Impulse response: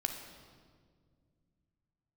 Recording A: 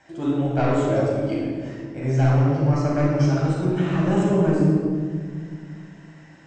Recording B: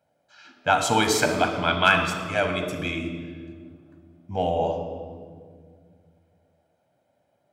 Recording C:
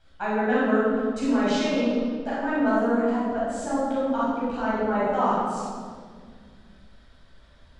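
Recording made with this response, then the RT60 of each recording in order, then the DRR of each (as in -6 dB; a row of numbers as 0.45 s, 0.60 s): B; 1.9 s, 1.8 s, 1.9 s; -5.0 dB, 4.5 dB, -10.0 dB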